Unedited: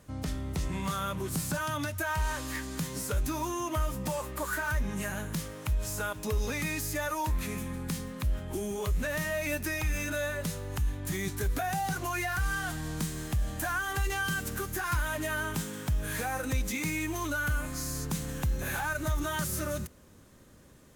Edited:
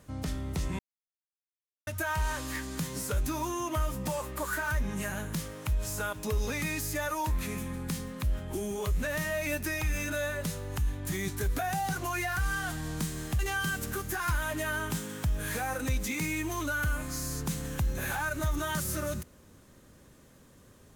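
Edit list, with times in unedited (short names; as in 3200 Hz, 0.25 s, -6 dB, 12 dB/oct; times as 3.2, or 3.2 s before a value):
0.79–1.87 mute
13.39–14.03 cut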